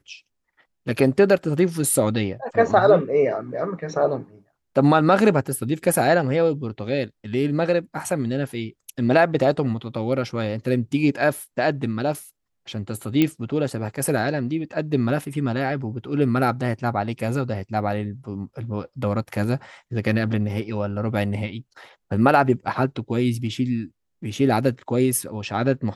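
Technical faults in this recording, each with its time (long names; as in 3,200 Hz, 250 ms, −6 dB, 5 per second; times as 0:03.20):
0:13.22: click −7 dBFS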